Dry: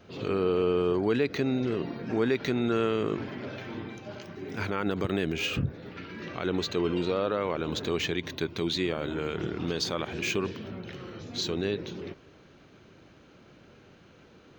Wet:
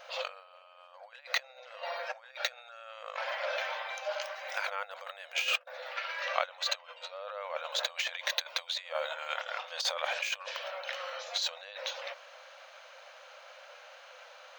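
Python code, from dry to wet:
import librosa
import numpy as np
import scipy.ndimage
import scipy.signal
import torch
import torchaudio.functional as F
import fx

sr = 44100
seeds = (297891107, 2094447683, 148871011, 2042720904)

y = fx.notch_comb(x, sr, f0_hz=1000.0, at=(2.29, 2.92))
y = fx.over_compress(y, sr, threshold_db=-34.0, ratio=-0.5)
y = fx.brickwall_highpass(y, sr, low_hz=500.0)
y = F.gain(torch.from_numpy(y), 3.5).numpy()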